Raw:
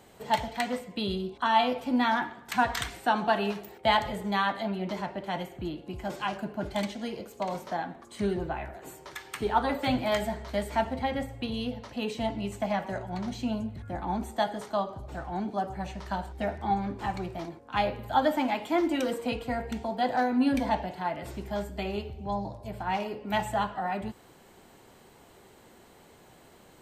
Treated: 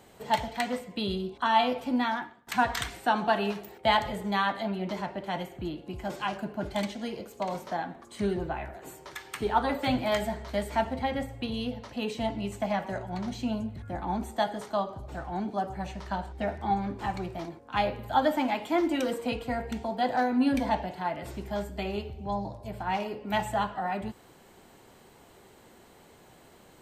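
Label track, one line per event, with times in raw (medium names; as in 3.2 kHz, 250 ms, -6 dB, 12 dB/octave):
1.860000	2.470000	fade out, to -17 dB
16.060000	16.480000	treble shelf 10 kHz -11 dB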